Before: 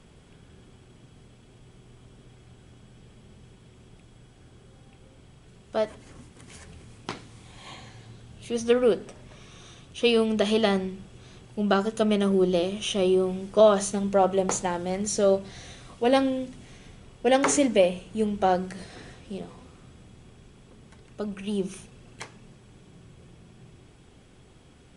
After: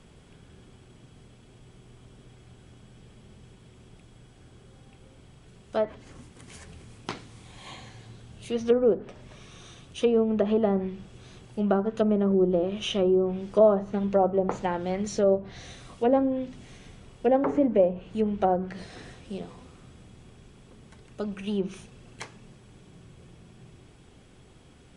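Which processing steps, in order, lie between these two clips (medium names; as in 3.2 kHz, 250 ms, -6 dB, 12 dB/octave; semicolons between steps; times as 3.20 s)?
low-pass that closes with the level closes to 810 Hz, closed at -18.5 dBFS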